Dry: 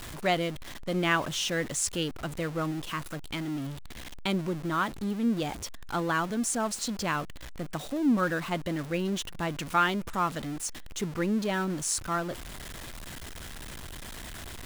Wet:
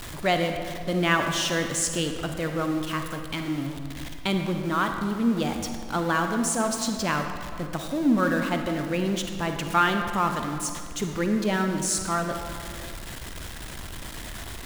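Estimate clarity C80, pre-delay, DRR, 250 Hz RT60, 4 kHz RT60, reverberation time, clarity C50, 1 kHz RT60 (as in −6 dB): 6.5 dB, 39 ms, 5.0 dB, 2.4 s, 1.4 s, 2.1 s, 5.5 dB, 2.0 s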